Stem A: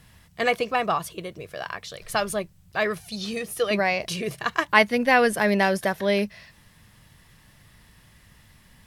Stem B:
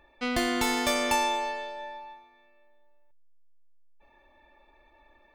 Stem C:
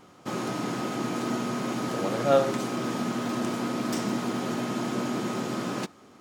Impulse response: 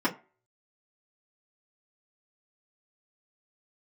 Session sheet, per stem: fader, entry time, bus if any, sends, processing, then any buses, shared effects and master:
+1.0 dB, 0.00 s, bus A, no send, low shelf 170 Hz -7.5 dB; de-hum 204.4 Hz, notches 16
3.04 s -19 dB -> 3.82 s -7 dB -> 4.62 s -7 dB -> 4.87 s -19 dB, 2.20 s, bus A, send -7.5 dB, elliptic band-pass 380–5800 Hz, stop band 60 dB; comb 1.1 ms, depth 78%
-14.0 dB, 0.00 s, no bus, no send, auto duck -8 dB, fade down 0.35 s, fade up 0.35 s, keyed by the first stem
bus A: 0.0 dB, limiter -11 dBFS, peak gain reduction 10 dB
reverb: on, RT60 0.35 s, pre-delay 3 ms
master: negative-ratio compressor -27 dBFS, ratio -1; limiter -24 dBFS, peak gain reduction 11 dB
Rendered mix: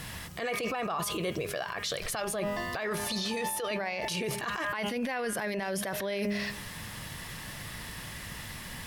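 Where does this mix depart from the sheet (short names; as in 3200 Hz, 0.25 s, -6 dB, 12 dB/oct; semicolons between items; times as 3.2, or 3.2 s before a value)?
stem A +1.0 dB -> +10.5 dB; stem C -14.0 dB -> -23.5 dB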